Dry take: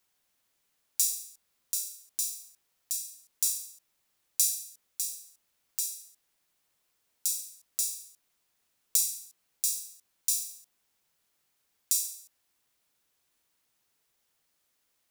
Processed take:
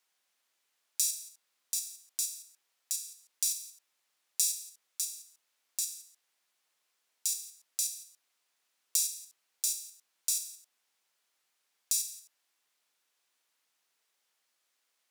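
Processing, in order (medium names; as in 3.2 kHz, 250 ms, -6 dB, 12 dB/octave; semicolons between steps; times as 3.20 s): frequency weighting A; in parallel at -2 dB: level held to a coarse grid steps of 17 dB; on the sum: trim -3.5 dB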